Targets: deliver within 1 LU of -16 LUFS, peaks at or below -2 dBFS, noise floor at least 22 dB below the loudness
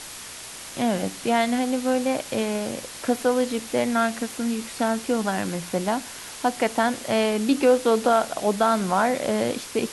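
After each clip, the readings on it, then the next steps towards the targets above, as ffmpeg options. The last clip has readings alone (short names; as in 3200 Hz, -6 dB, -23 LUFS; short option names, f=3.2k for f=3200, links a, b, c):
noise floor -39 dBFS; noise floor target -46 dBFS; loudness -24.0 LUFS; peak -7.0 dBFS; loudness target -16.0 LUFS
-> -af "afftdn=nr=7:nf=-39"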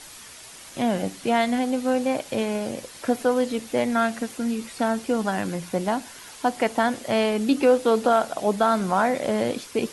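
noise floor -44 dBFS; noise floor target -46 dBFS
-> -af "afftdn=nr=6:nf=-44"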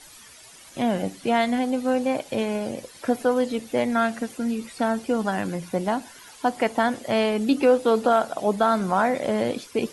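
noise floor -47 dBFS; loudness -24.0 LUFS; peak -7.5 dBFS; loudness target -16.0 LUFS
-> -af "volume=8dB,alimiter=limit=-2dB:level=0:latency=1"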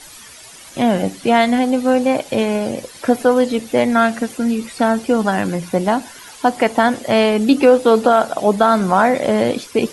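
loudness -16.5 LUFS; peak -2.0 dBFS; noise floor -39 dBFS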